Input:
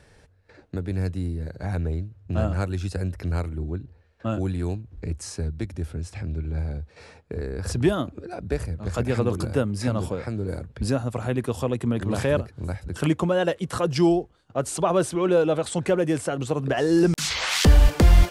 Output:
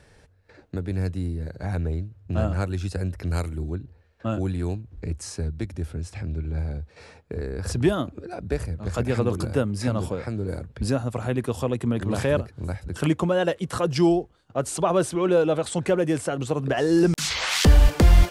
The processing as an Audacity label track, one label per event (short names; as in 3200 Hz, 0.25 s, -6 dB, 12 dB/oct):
3.310000	3.750000	high shelf 4000 Hz +12 dB